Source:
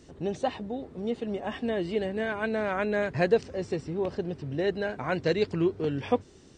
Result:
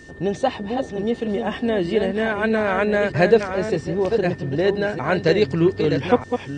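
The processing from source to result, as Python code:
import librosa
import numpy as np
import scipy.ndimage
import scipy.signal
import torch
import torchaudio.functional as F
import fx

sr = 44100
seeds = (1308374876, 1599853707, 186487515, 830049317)

y = fx.reverse_delay(x, sr, ms=624, wet_db=-6.5)
y = y + 10.0 ** (-52.0 / 20.0) * np.sin(2.0 * np.pi * 1800.0 * np.arange(len(y)) / sr)
y = y * 10.0 ** (8.0 / 20.0)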